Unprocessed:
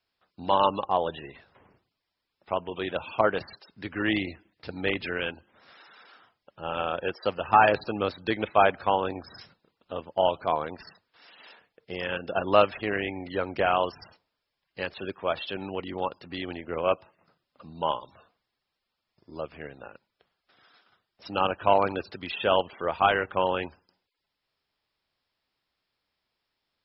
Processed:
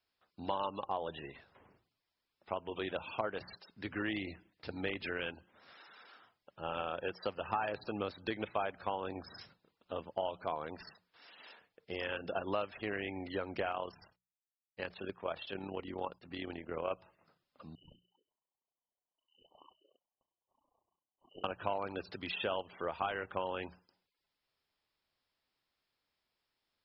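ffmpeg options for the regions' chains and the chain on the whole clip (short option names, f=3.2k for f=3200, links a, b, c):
-filter_complex "[0:a]asettb=1/sr,asplit=3[a][b][c];[a]atrim=end=13.724[d];[b]atrim=start=13.72:end=16.91,asetpts=PTS-STARTPTS,afade=t=in:d=0.004:c=qsin,afade=t=out:st=3.186:d=0.004:c=qsin,lowpass=f=3.9k:p=1,agate=range=-33dB:threshold=-49dB:ratio=3:release=100:detection=peak,tremolo=f=37:d=0.571[e];[c]atrim=start=16.906[f];[d][e]acrossfade=d=0.004:c1=hsin:c2=qsin[g];[g][f]acrossfade=d=0.004:c1=qsin:c2=hsin,asettb=1/sr,asplit=3[h][i][j];[h]atrim=end=17.754[k];[i]atrim=start=17.75:end=21.44,asetpts=PTS-STARTPTS,afade=t=in:d=0.004:c=qsin,afade=t=out:st=3.686:d=0.004:c=qsin,tremolo=f=30:d=0.788,lowpass=f=2.6k:t=q:w=0.5098,lowpass=f=2.6k:t=q:w=0.6013,lowpass=f=2.6k:t=q:w=0.9,lowpass=f=2.6k:t=q:w=2.563,afreqshift=-3100,asuperstop=centerf=1900:order=20:qfactor=0.91[l];[j]atrim=start=21.436[m];[k][l]acrossfade=d=0.004:c1=hsin:c2=qsin[n];[n][m]acrossfade=d=0.004:c1=qsin:c2=hsin,bandreject=f=60:t=h:w=6,bandreject=f=120:t=h:w=6,bandreject=f=180:t=h:w=6,acompressor=threshold=-29dB:ratio=4,volume=-4.5dB"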